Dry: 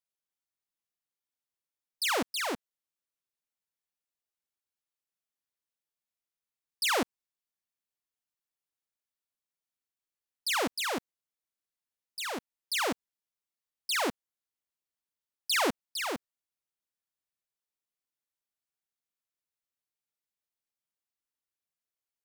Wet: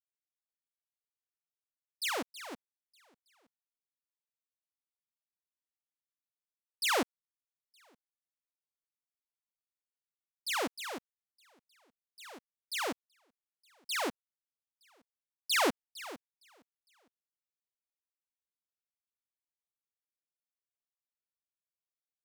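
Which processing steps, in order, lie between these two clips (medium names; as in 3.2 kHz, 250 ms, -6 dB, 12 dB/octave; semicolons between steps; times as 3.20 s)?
2.09–2.52 s: companding laws mixed up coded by A; delay 918 ms -18.5 dB; upward expansion 2.5:1, over -38 dBFS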